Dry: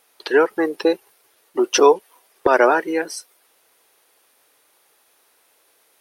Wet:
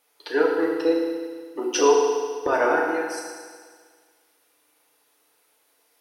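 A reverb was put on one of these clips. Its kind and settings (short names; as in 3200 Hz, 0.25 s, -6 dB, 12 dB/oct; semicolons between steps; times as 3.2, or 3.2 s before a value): FDN reverb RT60 1.7 s, low-frequency decay 0.95×, high-frequency decay 1×, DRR -2.5 dB; gain -9.5 dB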